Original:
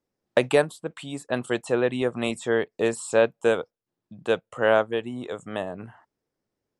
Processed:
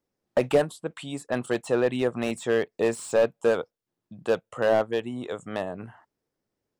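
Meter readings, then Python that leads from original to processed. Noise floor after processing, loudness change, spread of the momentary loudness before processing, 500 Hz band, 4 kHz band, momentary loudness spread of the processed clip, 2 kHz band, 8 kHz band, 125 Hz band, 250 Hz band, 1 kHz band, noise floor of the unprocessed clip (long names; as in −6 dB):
−85 dBFS, −1.5 dB, 14 LU, −1.0 dB, −3.5 dB, 12 LU, −4.5 dB, −2.0 dB, −1.0 dB, −0.5 dB, −2.0 dB, −85 dBFS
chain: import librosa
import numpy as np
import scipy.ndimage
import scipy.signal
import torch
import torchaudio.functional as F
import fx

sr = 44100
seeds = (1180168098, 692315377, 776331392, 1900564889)

y = fx.slew_limit(x, sr, full_power_hz=110.0)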